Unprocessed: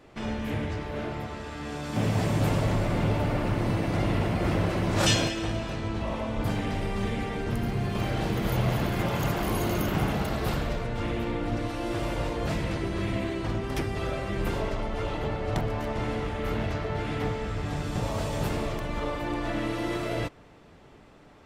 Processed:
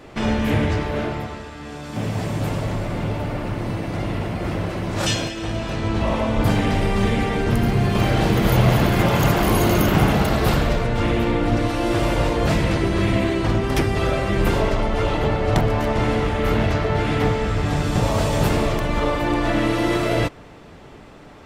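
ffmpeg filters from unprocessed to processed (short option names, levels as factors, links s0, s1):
-af "volume=10,afade=t=out:st=0.75:d=0.77:silence=0.316228,afade=t=in:st=5.34:d=0.7:silence=0.354813"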